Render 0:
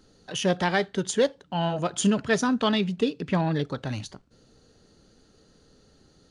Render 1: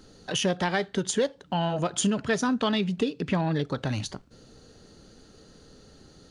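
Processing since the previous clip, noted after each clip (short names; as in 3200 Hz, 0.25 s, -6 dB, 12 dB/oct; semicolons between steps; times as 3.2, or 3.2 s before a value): compressor 2.5:1, threshold -32 dBFS, peak gain reduction 10 dB; gain +6 dB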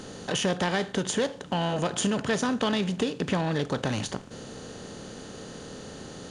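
per-bin compression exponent 0.6; gain -3.5 dB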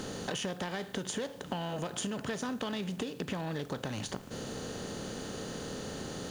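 compressor 5:1, threshold -36 dBFS, peak gain reduction 13.5 dB; added noise white -67 dBFS; gain +2 dB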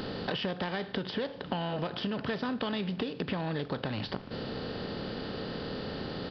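downsampling 11025 Hz; gain +3 dB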